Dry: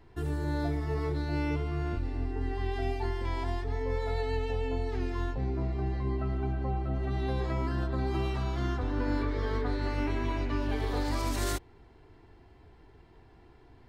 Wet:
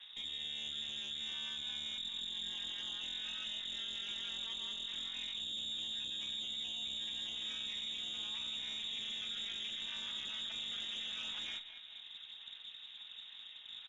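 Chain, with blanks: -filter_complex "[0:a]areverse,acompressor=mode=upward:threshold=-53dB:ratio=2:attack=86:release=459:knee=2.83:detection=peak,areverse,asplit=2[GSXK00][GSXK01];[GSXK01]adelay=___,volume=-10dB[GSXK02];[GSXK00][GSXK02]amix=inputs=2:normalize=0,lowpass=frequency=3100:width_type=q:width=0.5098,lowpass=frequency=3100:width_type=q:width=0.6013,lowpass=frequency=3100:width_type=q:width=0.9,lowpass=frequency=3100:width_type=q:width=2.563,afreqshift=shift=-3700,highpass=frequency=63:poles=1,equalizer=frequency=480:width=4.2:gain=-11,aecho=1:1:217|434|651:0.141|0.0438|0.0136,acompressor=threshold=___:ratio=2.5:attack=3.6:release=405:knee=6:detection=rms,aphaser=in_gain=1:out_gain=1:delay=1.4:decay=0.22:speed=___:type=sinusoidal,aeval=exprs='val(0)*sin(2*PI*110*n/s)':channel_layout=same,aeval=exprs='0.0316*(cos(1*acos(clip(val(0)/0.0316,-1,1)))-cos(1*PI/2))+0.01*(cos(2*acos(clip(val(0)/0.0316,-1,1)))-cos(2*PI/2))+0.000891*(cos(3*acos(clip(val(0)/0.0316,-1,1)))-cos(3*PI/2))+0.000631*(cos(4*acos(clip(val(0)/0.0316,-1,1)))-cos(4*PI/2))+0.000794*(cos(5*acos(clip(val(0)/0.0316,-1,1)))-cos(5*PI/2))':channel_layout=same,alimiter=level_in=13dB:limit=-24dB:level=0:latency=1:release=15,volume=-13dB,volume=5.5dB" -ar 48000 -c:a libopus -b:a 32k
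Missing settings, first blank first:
33, -43dB, 0.8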